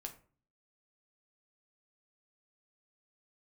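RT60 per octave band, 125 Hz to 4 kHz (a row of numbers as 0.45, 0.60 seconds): 0.65, 0.60, 0.45, 0.40, 0.35, 0.25 seconds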